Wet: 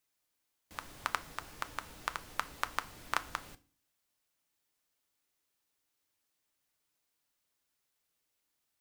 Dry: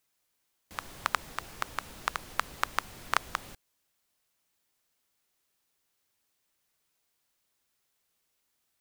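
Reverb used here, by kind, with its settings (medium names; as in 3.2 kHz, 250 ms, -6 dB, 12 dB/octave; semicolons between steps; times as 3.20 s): FDN reverb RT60 0.39 s, low-frequency decay 1.4×, high-frequency decay 0.95×, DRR 11 dB; trim -5 dB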